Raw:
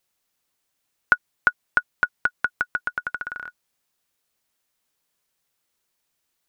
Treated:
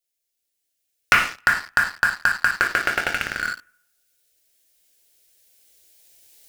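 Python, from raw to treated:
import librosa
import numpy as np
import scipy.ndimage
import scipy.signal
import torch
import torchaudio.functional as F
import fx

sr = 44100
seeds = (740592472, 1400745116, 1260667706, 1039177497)

y = fx.rattle_buzz(x, sr, strikes_db=-43.0, level_db=-23.0)
y = fx.recorder_agc(y, sr, target_db=-6.5, rise_db_per_s=6.5, max_gain_db=30)
y = fx.band_shelf(y, sr, hz=520.0, db=10.5, octaves=1.7, at=(2.54, 3.14))
y = fx.env_phaser(y, sr, low_hz=180.0, high_hz=2000.0, full_db=-18.5)
y = fx.rev_double_slope(y, sr, seeds[0], early_s=0.6, late_s=1.5, knee_db=-24, drr_db=0.0)
y = fx.leveller(y, sr, passes=3)
y = fx.high_shelf(y, sr, hz=4000.0, db=5.5)
y = y * 10.0 ** (-6.0 / 20.0)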